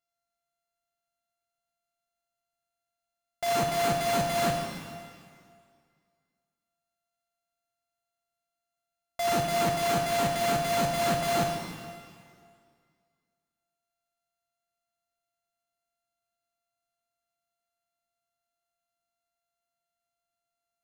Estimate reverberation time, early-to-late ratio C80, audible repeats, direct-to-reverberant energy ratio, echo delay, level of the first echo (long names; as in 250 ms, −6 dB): 2.1 s, 4.5 dB, no echo audible, 1.5 dB, no echo audible, no echo audible